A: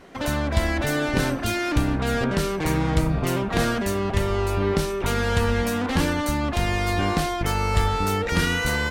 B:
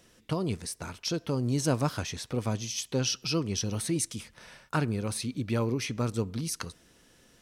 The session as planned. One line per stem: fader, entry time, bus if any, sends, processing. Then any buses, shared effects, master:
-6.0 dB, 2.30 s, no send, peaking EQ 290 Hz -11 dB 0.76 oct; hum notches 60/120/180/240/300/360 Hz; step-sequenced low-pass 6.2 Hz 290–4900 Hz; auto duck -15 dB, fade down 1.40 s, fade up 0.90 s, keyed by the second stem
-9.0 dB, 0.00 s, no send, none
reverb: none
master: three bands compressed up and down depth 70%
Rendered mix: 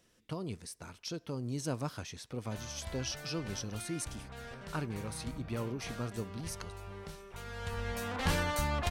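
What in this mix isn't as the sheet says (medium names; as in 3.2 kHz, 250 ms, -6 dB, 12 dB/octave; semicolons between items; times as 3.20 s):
stem A: missing step-sequenced low-pass 6.2 Hz 290–4900 Hz; master: missing three bands compressed up and down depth 70%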